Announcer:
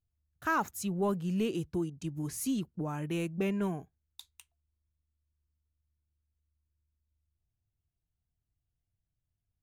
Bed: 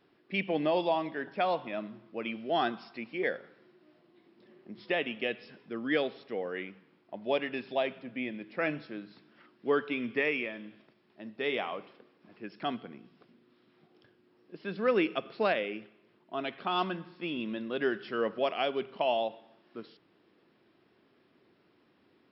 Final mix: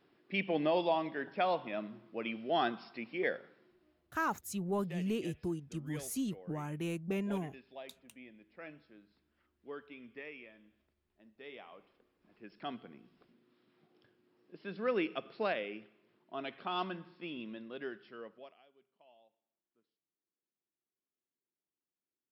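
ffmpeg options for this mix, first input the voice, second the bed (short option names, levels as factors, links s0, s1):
-filter_complex "[0:a]adelay=3700,volume=0.631[s0];[1:a]volume=2.99,afade=t=out:st=3.31:d=0.85:silence=0.16788,afade=t=in:st=11.67:d=1.39:silence=0.251189,afade=t=out:st=16.99:d=1.63:silence=0.0334965[s1];[s0][s1]amix=inputs=2:normalize=0"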